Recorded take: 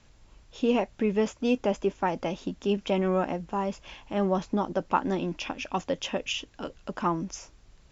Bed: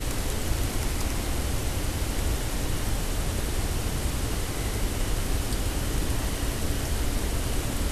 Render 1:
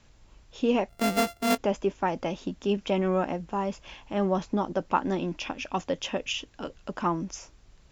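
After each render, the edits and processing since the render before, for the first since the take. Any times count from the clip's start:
0:00.89–0:01.58: samples sorted by size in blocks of 64 samples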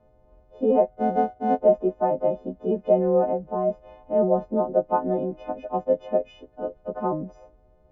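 every partial snapped to a pitch grid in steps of 3 semitones
low-pass with resonance 610 Hz, resonance Q 3.7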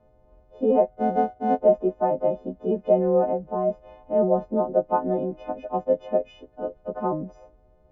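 no processing that can be heard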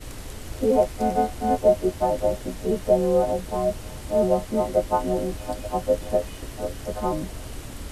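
mix in bed −8.5 dB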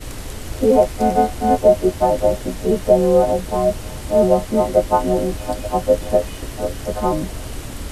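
level +6.5 dB
brickwall limiter −2 dBFS, peak gain reduction 1.5 dB

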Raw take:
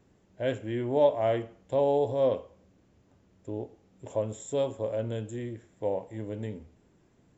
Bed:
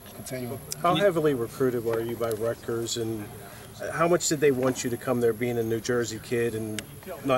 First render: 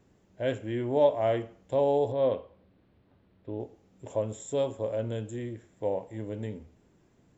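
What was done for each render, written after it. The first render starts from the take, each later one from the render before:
0:02.12–0:03.60: Chebyshev low-pass filter 4,200 Hz, order 4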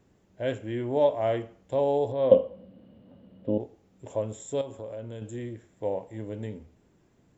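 0:02.31–0:03.58: hollow resonant body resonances 220/520/2,900 Hz, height 17 dB, ringing for 30 ms
0:04.61–0:05.22: downward compressor 3 to 1, threshold −36 dBFS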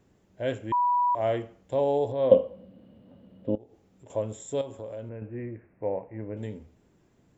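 0:00.72–0:01.15: beep over 978 Hz −20.5 dBFS
0:03.55–0:04.10: downward compressor 2.5 to 1, threshold −50 dBFS
0:05.09–0:06.37: Butterworth low-pass 2,600 Hz 96 dB per octave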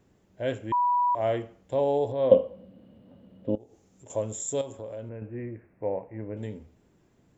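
0:03.49–0:04.73: parametric band 6,700 Hz +12.5 dB 0.69 octaves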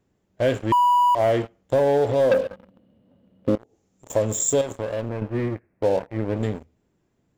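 leveller curve on the samples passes 3
downward compressor 6 to 1, threshold −16 dBFS, peak gain reduction 8 dB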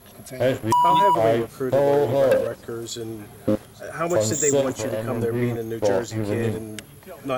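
mix in bed −2 dB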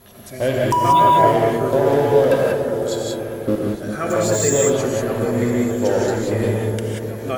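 echo whose low-pass opens from repeat to repeat 201 ms, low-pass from 400 Hz, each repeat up 1 octave, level −6 dB
reverb whose tail is shaped and stops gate 210 ms rising, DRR −1.5 dB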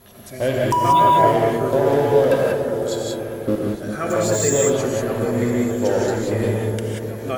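level −1 dB

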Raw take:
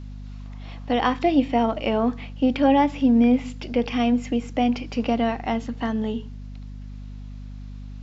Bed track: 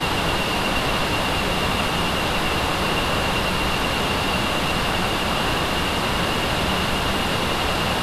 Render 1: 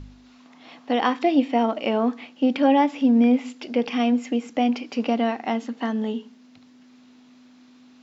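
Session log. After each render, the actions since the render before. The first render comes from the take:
hum removal 50 Hz, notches 4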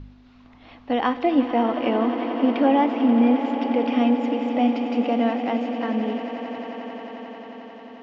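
high-frequency loss of the air 200 metres
echo that builds up and dies away 89 ms, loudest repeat 8, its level −14 dB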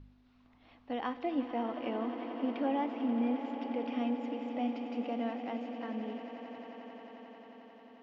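level −14 dB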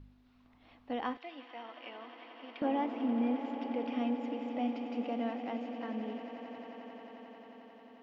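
0:01.17–0:02.62: resonant band-pass 3,300 Hz, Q 0.69

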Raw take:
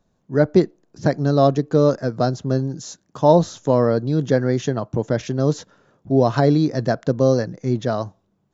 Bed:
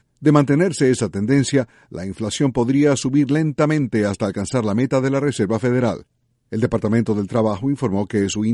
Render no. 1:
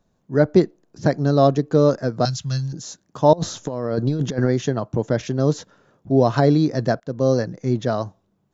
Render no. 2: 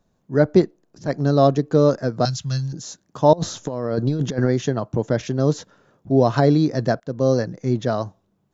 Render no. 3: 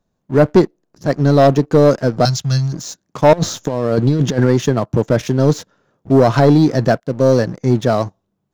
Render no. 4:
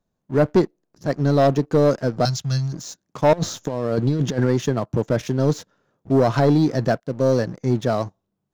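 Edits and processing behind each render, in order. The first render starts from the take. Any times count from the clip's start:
0:02.25–0:02.73: drawn EQ curve 150 Hz 0 dB, 210 Hz −11 dB, 350 Hz −25 dB, 900 Hz −9 dB, 1,600 Hz −1 dB, 2,600 Hz +9 dB; 0:03.33–0:04.48: compressor whose output falls as the input rises −21 dBFS, ratio −0.5; 0:07.00–0:07.48: fade in equal-power, from −20.5 dB
0:00.61–0:01.21: transient designer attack −11 dB, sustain −2 dB
leveller curve on the samples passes 2
level −6 dB

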